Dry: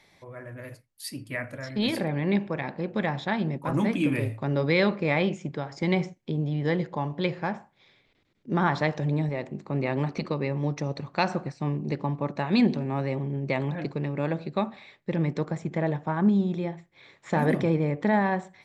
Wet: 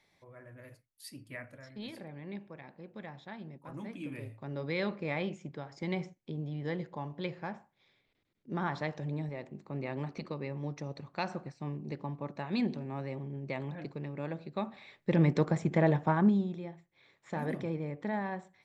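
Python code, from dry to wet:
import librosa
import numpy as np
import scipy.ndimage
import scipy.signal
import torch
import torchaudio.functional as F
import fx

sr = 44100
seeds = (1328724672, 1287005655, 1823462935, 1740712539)

y = fx.gain(x, sr, db=fx.line((1.35, -11.0), (1.93, -18.0), (3.82, -18.0), (4.93, -10.0), (14.5, -10.0), (15.16, 1.0), (16.09, 1.0), (16.6, -11.5)))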